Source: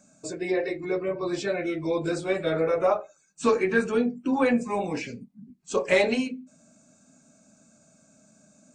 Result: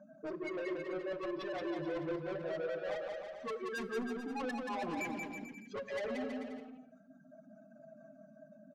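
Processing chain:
expanding power law on the bin magnitudes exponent 2.3
high-pass filter 190 Hz 12 dB per octave
mains-hum notches 60/120/180/240/300/360 Hz
reverb reduction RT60 1.2 s
Butterworth low-pass 4,900 Hz 48 dB per octave
flat-topped bell 1,100 Hz +12 dB
reversed playback
downward compressor 5 to 1, threshold −34 dBFS, peak gain reduction 19.5 dB
reversed playback
soft clipping −40 dBFS, distortion −8 dB
bouncing-ball delay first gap 180 ms, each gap 0.8×, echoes 5
on a send at −14.5 dB: convolution reverb RT60 1.1 s, pre-delay 6 ms
on the sum: level +2.5 dB

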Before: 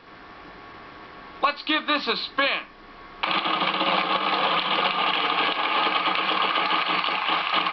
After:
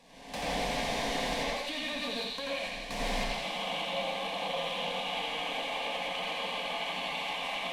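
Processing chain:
linear delta modulator 64 kbit/s, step −28.5 dBFS
camcorder AGC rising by 41 dB per second
low-pass filter 3,200 Hz 6 dB per octave
hum removal 371.6 Hz, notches 9
noise gate with hold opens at −18 dBFS
downward compressor 4 to 1, threshold −33 dBFS, peak gain reduction 16 dB
phaser with its sweep stopped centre 360 Hz, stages 6
soft clipping −30.5 dBFS, distortion −18 dB
delay with a high-pass on its return 84 ms, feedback 80%, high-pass 1,600 Hz, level −7 dB
convolution reverb RT60 0.50 s, pre-delay 78 ms, DRR −4 dB

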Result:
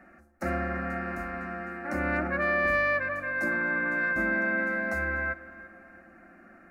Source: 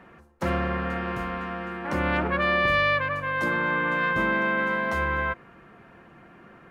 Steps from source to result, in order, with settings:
phaser with its sweep stopped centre 660 Hz, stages 8
tape delay 339 ms, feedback 55%, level −16.5 dB, low-pass 2,400 Hz
level −1 dB

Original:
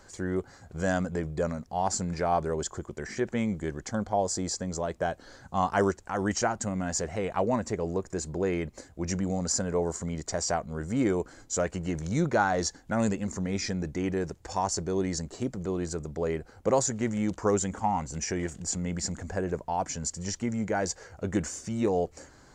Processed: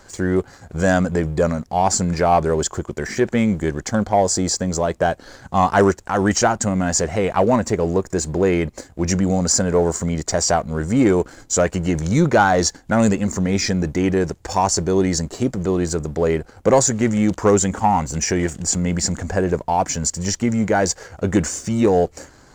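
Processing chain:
leveller curve on the samples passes 1
level +7.5 dB

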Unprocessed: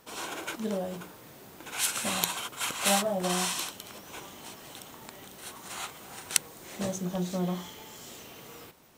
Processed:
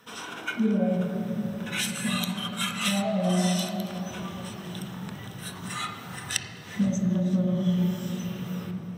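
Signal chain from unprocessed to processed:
downward compressor 4 to 1, threshold −39 dBFS, peak gain reduction 18 dB
noise reduction from a noise print of the clip's start 11 dB
convolution reverb RT60 3.9 s, pre-delay 3 ms, DRR 2 dB
level +5 dB

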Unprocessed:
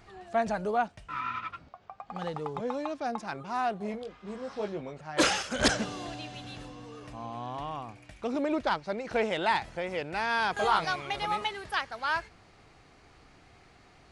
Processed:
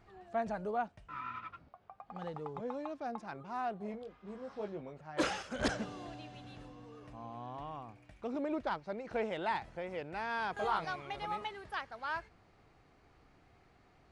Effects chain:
high-shelf EQ 2,500 Hz −9 dB
level −6.5 dB

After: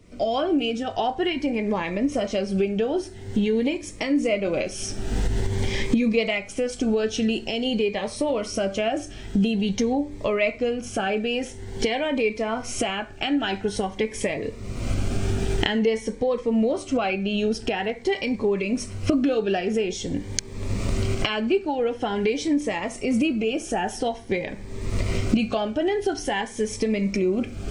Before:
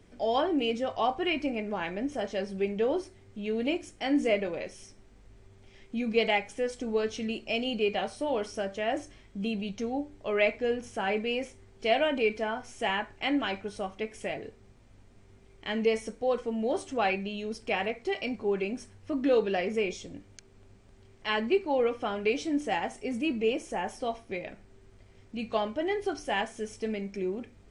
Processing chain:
camcorder AGC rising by 44 dB per second
0:15.79–0:17.89: high-shelf EQ 7,200 Hz −6.5 dB
phaser whose notches keep moving one way rising 0.48 Hz
level +4 dB

